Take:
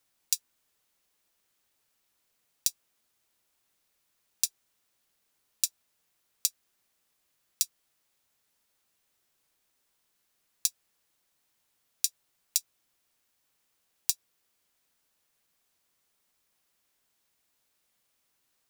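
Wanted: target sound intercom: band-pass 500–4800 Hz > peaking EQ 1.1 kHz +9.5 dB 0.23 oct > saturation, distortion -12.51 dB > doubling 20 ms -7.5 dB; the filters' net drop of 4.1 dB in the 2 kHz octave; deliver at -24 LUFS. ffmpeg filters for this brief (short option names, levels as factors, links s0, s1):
-filter_complex "[0:a]highpass=500,lowpass=4800,equalizer=f=1100:t=o:w=0.23:g=9.5,equalizer=f=2000:t=o:g=-6,asoftclip=threshold=0.1,asplit=2[s0][s1];[s1]adelay=20,volume=0.422[s2];[s0][s2]amix=inputs=2:normalize=0,volume=7.08"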